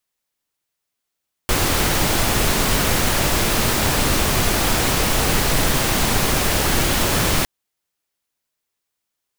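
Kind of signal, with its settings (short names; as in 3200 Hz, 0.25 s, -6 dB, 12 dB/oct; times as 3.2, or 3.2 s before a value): noise pink, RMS -18 dBFS 5.96 s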